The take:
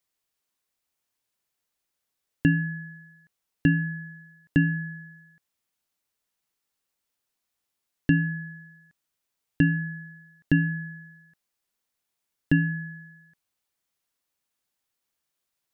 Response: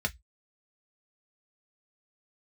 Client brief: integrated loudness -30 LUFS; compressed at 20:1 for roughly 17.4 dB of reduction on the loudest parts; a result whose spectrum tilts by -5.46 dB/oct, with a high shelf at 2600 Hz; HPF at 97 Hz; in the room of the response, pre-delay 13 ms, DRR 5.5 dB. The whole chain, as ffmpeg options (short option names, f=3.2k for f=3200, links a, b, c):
-filter_complex "[0:a]highpass=97,highshelf=f=2.6k:g=4,acompressor=threshold=-34dB:ratio=20,asplit=2[a][b];[1:a]atrim=start_sample=2205,adelay=13[c];[b][c]afir=irnorm=-1:irlink=0,volume=-11.5dB[d];[a][d]amix=inputs=2:normalize=0,volume=10dB"